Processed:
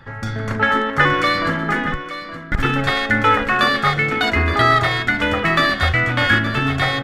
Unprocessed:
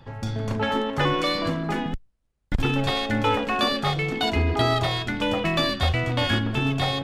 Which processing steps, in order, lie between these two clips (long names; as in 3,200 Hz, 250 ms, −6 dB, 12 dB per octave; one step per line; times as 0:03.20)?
flat-topped bell 1,600 Hz +11 dB 1 octave
on a send: single-tap delay 870 ms −12 dB
on the sum: level +3 dB